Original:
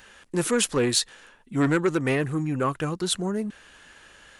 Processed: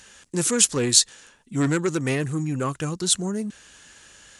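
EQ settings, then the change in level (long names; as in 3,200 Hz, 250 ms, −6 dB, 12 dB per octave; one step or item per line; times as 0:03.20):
high-pass filter 77 Hz 6 dB per octave
low-shelf EQ 240 Hz +9.5 dB
parametric band 6,900 Hz +14.5 dB 1.6 octaves
−4.0 dB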